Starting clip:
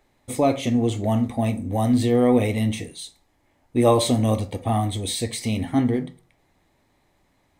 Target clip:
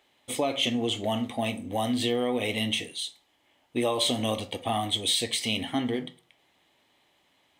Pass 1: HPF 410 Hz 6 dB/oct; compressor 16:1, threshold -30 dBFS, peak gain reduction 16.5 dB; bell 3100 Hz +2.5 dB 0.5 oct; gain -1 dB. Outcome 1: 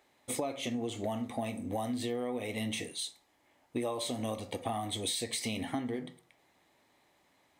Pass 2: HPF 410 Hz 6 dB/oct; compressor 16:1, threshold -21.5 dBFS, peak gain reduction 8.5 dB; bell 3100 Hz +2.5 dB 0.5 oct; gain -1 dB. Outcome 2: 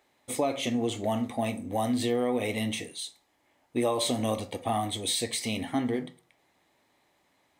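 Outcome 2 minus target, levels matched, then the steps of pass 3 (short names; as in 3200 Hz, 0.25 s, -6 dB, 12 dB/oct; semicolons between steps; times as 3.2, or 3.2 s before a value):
4000 Hz band -5.0 dB
HPF 410 Hz 6 dB/oct; compressor 16:1, threshold -21.5 dBFS, peak gain reduction 8.5 dB; bell 3100 Hz +13.5 dB 0.5 oct; gain -1 dB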